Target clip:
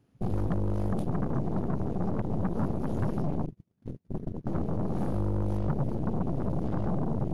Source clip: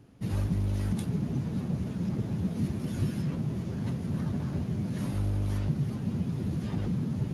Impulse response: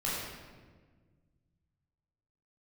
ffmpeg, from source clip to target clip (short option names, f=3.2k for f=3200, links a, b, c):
-filter_complex "[0:a]asettb=1/sr,asplit=3[a][b][c];[a]atrim=end=3.464[d];[b]atrim=start=3.46:end=4.47,asetpts=PTS-STARTPTS,afade=t=in:d=0.004:c=qsin,afade=t=out:st=1.006:d=0.004:c=qsin,agate=range=-35dB:threshold=-28dB:ratio=16:detection=peak[e];[c]atrim=start=4.466[f];[d][e]acrossfade=d=0.004:c1=hsin:c2=qsin[g];[g][f]acrossfade=d=0.004:c1=qsin:c2=hsin,afwtdn=0.0224,lowshelf=f=170:g=-3,asplit=2[h][i];[i]acompressor=threshold=-40dB:ratio=6,volume=1dB[j];[h][j]amix=inputs=2:normalize=0,aeval=exprs='0.126*(cos(1*acos(clip(val(0)/0.126,-1,1)))-cos(1*PI/2))+0.0316*(cos(8*acos(clip(val(0)/0.126,-1,1)))-cos(8*PI/2))':c=same,asoftclip=type=tanh:threshold=-19.5dB"